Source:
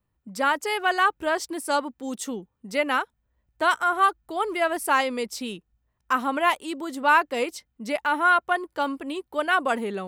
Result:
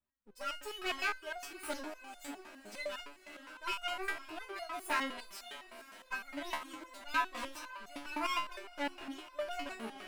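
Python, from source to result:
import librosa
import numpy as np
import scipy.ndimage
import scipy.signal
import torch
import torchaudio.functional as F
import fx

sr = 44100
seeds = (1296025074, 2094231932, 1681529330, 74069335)

y = fx.lower_of_two(x, sr, delay_ms=3.1)
y = fx.low_shelf(y, sr, hz=430.0, db=-7.0)
y = fx.echo_diffused(y, sr, ms=545, feedback_pct=57, wet_db=-13)
y = fx.resonator_held(y, sr, hz=9.8, low_hz=75.0, high_hz=710.0)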